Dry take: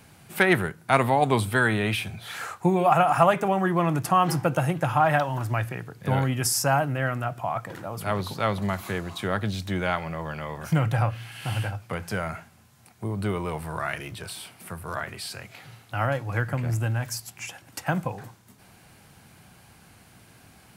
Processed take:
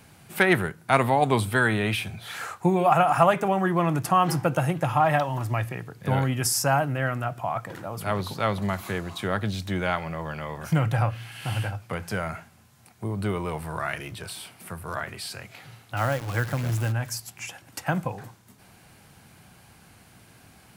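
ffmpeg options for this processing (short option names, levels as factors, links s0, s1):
-filter_complex "[0:a]asettb=1/sr,asplit=3[s0][s1][s2];[s0]atrim=end=4.824[s3];[s1]atrim=start=4.82:end=5.88,asetpts=PTS-STARTPTS,afade=t=in:d=0.004:c=qsin,afade=t=out:st=1.056:d=0.004:c=qsin,bandreject=f=1500:w=8.1[s4];[s2]atrim=start=5.876[s5];[s3][s4]acrossfade=d=0.004:c1=hsin:c2=qsin[s6];[s6][s5]acrossfade=d=0.004:c1=qsin:c2=hsin,asplit=3[s7][s8][s9];[s7]afade=t=out:st=15.96:d=0.02[s10];[s8]acrusher=bits=7:dc=4:mix=0:aa=0.000001,afade=t=in:st=15.96:d=0.02,afade=t=out:st=16.91:d=0.02[s11];[s9]afade=t=in:st=16.91:d=0.02[s12];[s10][s11][s12]amix=inputs=3:normalize=0"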